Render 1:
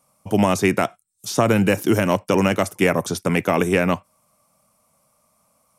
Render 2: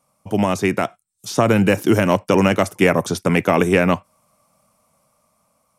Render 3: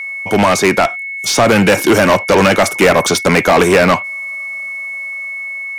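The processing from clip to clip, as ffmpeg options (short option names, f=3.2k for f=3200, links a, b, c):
-af "highshelf=f=6.9k:g=-5.5,dynaudnorm=f=360:g=7:m=11.5dB,volume=-1dB"
-filter_complex "[0:a]aeval=exprs='val(0)+0.0112*sin(2*PI*2200*n/s)':c=same,asplit=2[a][b];[b]highpass=f=720:p=1,volume=24dB,asoftclip=type=tanh:threshold=-1.5dB[c];[a][c]amix=inputs=2:normalize=0,lowpass=f=6.1k:p=1,volume=-6dB"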